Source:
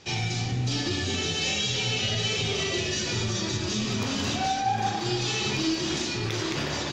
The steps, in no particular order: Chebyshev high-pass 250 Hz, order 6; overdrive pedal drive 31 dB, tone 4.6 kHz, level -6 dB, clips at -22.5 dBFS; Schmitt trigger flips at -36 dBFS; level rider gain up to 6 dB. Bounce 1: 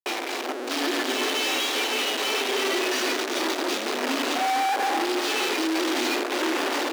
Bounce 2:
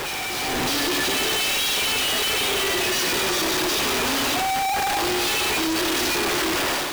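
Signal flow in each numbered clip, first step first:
Schmitt trigger > level rider > overdrive pedal > Chebyshev high-pass; overdrive pedal > Chebyshev high-pass > Schmitt trigger > level rider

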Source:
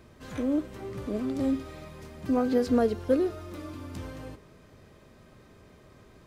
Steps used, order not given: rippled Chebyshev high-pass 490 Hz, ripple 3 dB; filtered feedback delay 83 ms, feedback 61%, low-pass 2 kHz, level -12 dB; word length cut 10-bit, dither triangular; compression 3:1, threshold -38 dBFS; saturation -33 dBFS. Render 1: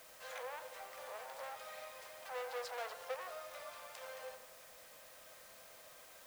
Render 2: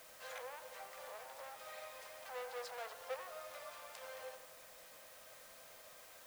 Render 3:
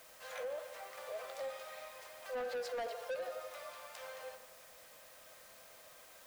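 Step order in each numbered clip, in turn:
saturation > rippled Chebyshev high-pass > compression > word length cut > filtered feedback delay; saturation > filtered feedback delay > compression > rippled Chebyshev high-pass > word length cut; rippled Chebyshev high-pass > word length cut > filtered feedback delay > saturation > compression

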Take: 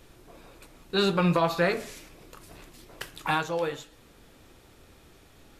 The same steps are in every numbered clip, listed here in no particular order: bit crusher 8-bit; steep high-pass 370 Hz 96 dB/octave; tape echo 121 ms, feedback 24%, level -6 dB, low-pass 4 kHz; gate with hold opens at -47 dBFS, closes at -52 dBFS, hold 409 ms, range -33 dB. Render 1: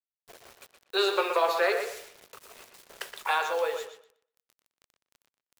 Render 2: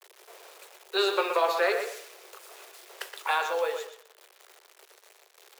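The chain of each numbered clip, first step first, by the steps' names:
gate with hold > steep high-pass > bit crusher > tape echo; bit crusher > gate with hold > steep high-pass > tape echo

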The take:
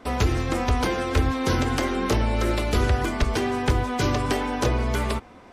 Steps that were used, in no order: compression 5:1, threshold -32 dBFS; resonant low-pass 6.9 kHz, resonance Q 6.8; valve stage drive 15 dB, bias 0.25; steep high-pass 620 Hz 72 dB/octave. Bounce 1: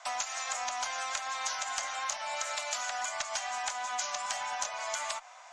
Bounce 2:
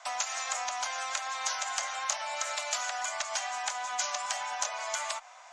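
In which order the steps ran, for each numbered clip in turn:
steep high-pass > valve stage > resonant low-pass > compression; steep high-pass > compression > valve stage > resonant low-pass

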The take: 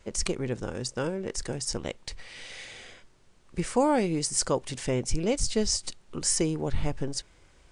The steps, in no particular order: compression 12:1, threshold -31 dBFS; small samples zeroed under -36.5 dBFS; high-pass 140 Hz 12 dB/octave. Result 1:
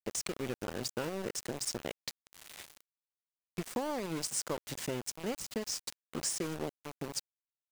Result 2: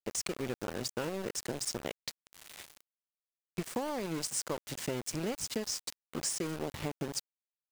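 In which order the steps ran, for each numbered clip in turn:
compression > high-pass > small samples zeroed; high-pass > compression > small samples zeroed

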